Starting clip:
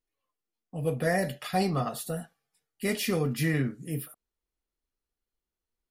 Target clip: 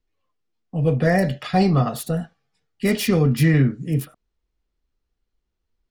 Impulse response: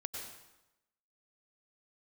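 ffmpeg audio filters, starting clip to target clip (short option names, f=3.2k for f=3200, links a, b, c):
-filter_complex "[0:a]lowshelf=f=210:g=9.5,acrossover=split=330|1100|6800[a][b][c][d];[d]acrusher=bits=5:mix=0:aa=0.5[e];[a][b][c][e]amix=inputs=4:normalize=0,volume=6dB"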